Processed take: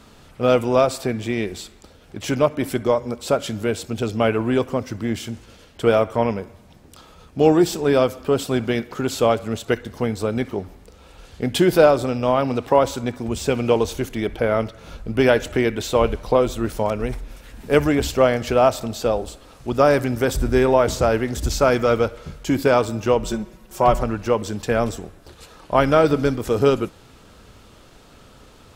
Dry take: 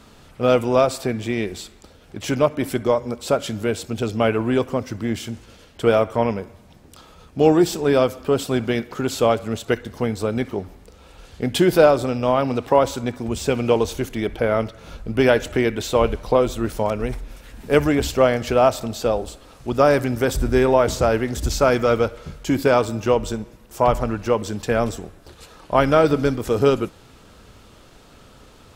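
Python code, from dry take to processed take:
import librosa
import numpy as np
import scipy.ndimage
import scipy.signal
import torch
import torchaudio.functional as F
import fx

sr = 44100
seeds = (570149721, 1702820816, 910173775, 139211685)

y = fx.comb(x, sr, ms=5.4, depth=0.67, at=(23.24, 24.03))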